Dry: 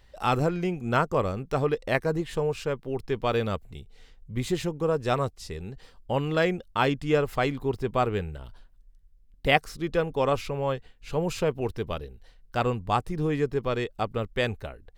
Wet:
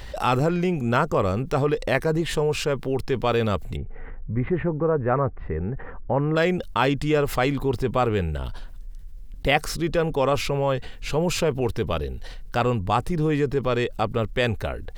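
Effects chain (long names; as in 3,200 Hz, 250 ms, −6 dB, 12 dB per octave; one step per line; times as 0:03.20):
0:03.76–0:06.36: Butterworth low-pass 1,900 Hz 36 dB per octave
envelope flattener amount 50%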